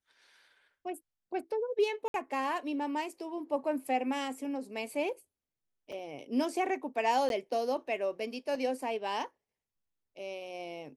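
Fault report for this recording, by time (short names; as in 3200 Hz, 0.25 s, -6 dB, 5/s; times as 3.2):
2.08–2.14 gap 62 ms
5.92 gap 4.7 ms
7.29–7.3 gap 12 ms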